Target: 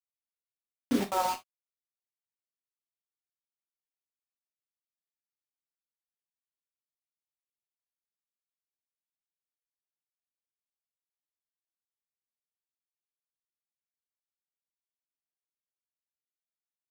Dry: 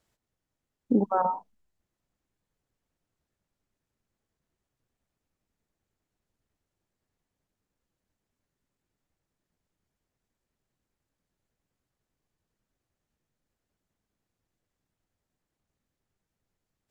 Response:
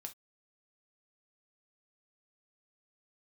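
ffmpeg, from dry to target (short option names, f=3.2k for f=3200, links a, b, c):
-filter_complex "[0:a]acrusher=bits=4:mix=0:aa=0.000001[a];[1:a]atrim=start_sample=2205[b];[a][b]afir=irnorm=-1:irlink=0"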